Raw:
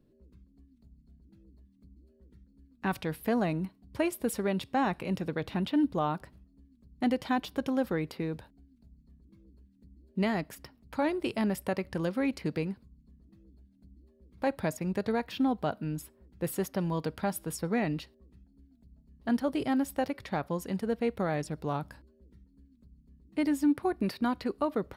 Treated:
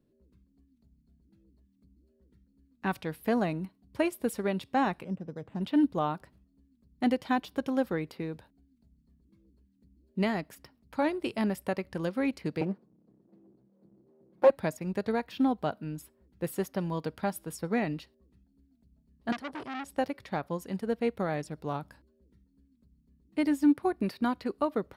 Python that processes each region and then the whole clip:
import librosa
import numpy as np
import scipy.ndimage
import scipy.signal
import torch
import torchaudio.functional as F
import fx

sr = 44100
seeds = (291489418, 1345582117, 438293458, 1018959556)

y = fx.chain(x, sr, fx.resample_bad(factor=8, down='none', up='hold'),
    fx.bandpass_q(hz=230.0, q=0.51),
    fx.peak_eq(hz=330.0, db=-5.5, octaves=0.73), at=(5.04, 5.61))
y = fx.chain(y, sr, fx.lower_of_two(delay_ms=5.5),
    fx.highpass(hz=250.0, slope=12),
    fx.tilt_shelf(db=10.0, hz=1400.0), at=(12.61, 14.5))
y = fx.chain(y, sr, fx.lowpass(hz=10000.0, slope=12),
    fx.transformer_sat(knee_hz=1900.0), at=(19.32, 19.98))
y = fx.low_shelf(y, sr, hz=64.0, db=-7.0)
y = fx.upward_expand(y, sr, threshold_db=-37.0, expansion=1.5)
y = y * librosa.db_to_amplitude(4.5)